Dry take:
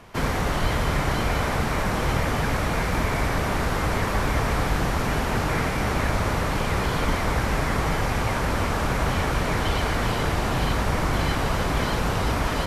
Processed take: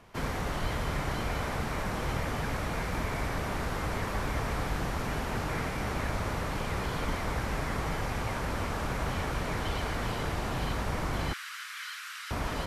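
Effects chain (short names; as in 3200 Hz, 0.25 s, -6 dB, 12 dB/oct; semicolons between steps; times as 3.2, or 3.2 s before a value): 11.33–12.31 steep high-pass 1300 Hz 48 dB/oct; gain -8.5 dB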